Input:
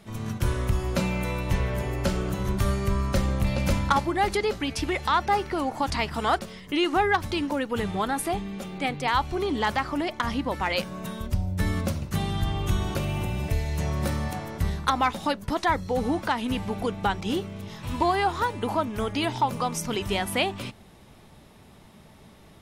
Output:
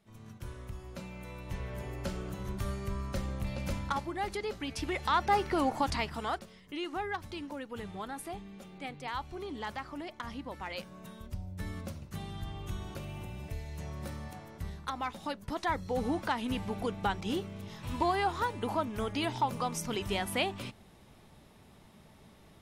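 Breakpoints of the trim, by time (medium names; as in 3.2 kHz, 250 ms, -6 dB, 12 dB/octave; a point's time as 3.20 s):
1.09 s -18 dB
1.84 s -11 dB
4.39 s -11 dB
5.66 s -1 dB
6.50 s -13.5 dB
14.89 s -13.5 dB
16.00 s -6 dB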